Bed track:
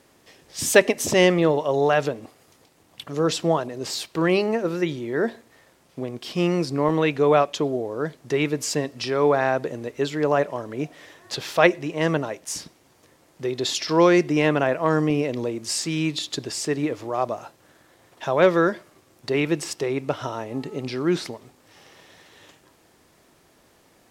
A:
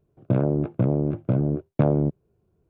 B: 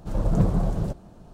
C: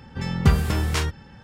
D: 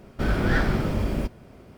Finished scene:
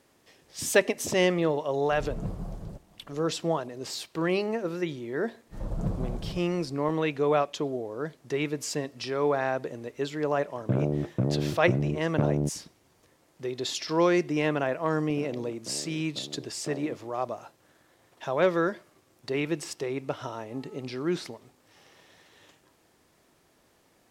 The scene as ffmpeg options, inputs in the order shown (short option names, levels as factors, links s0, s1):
-filter_complex "[2:a]asplit=2[s0][s1];[1:a]asplit=2[s2][s3];[0:a]volume=0.473[s4];[s3]highpass=270[s5];[s0]atrim=end=1.33,asetpts=PTS-STARTPTS,volume=0.211,afade=t=in:d=0.004:c=hsin,afade=t=out:st=1.326:d=0.004:c=hsin,adelay=1850[s6];[s1]atrim=end=1.33,asetpts=PTS-STARTPTS,volume=0.335,afade=t=in:d=0.1,afade=t=out:st=1.23:d=0.1,adelay=5460[s7];[s2]atrim=end=2.69,asetpts=PTS-STARTPTS,volume=0.562,afade=t=in:d=0.004:c=hsin,afade=t=out:st=2.686:d=0.004:c=hsin,adelay=10390[s8];[s5]atrim=end=2.69,asetpts=PTS-STARTPTS,volume=0.158,afade=t=in:d=0.004:c=hsin,afade=t=out:st=2.686:d=0.004:c=hsin,adelay=14870[s9];[s4][s6][s7][s8][s9]amix=inputs=5:normalize=0"